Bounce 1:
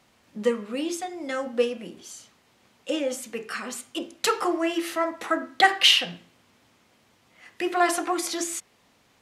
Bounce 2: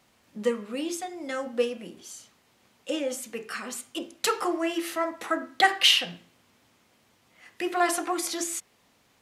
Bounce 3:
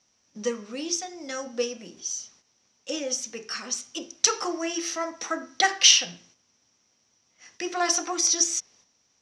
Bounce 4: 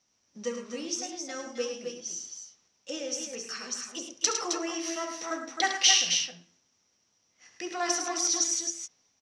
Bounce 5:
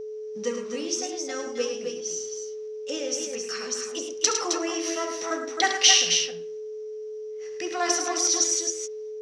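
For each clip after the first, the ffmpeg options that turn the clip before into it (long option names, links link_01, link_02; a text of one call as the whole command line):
ffmpeg -i in.wav -af "highshelf=frequency=10000:gain=6,volume=-2.5dB" out.wav
ffmpeg -i in.wav -af "lowpass=frequency=5800:width_type=q:width=15,agate=range=-8dB:threshold=-53dB:ratio=16:detection=peak,volume=-2.5dB" out.wav
ffmpeg -i in.wav -af "aecho=1:1:69|106|264|276:0.282|0.422|0.447|0.237,volume=-5.5dB" out.wav
ffmpeg -i in.wav -af "aeval=exprs='val(0)+0.0141*sin(2*PI*430*n/s)':channel_layout=same,volume=4dB" out.wav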